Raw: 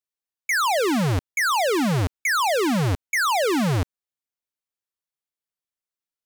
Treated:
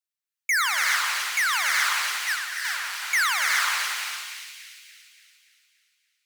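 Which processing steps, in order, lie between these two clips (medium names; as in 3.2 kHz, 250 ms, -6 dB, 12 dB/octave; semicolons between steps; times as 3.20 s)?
high-pass 1.3 kHz 24 dB/octave; 2.21–2.65 s: gate -21 dBFS, range -18 dB; two-band feedback delay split 2.2 kHz, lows 94 ms, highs 287 ms, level -5.5 dB; gated-style reverb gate 440 ms rising, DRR 0.5 dB; 0.96–1.53 s: transformer saturation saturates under 3.2 kHz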